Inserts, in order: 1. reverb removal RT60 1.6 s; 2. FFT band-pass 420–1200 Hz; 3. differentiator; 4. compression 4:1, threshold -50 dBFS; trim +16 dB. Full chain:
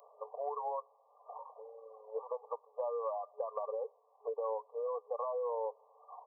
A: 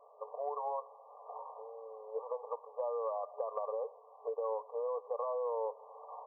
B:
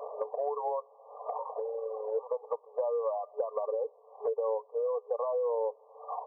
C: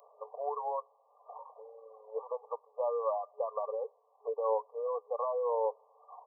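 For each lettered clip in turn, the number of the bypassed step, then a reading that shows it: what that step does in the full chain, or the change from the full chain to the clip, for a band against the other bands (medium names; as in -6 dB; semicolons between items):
1, momentary loudness spread change -3 LU; 3, crest factor change -2.5 dB; 4, mean gain reduction 2.0 dB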